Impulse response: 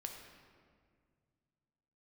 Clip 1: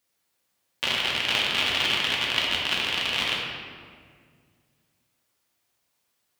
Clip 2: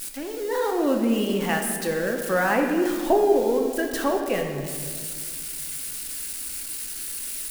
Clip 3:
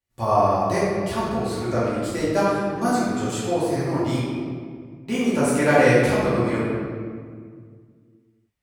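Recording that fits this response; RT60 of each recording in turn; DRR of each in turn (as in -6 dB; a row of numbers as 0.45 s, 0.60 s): 2; 1.9 s, 2.0 s, 1.9 s; -4.0 dB, 2.5 dB, -10.0 dB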